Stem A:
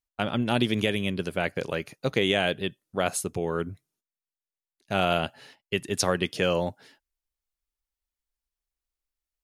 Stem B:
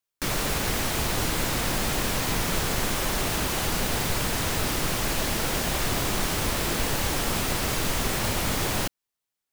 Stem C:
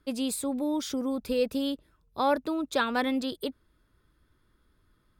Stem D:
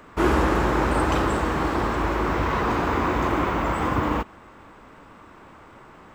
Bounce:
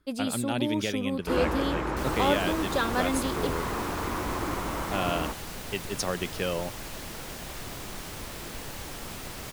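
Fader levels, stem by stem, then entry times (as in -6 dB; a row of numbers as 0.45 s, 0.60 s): -5.5 dB, -12.5 dB, -1.0 dB, -9.0 dB; 0.00 s, 1.75 s, 0.00 s, 1.10 s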